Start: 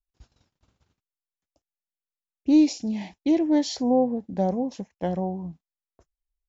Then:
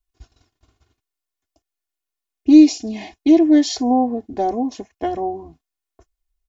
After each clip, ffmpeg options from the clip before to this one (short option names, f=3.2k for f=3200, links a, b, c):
-af "aecho=1:1:2.8:0.97,volume=4dB"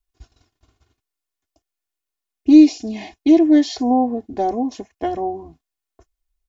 -filter_complex "[0:a]acrossover=split=4400[a][b];[b]acompressor=threshold=-37dB:ratio=4:attack=1:release=60[c];[a][c]amix=inputs=2:normalize=0"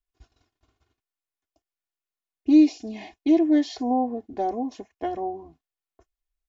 -af "bass=f=250:g=-4,treble=f=4k:g=-5,volume=-5.5dB"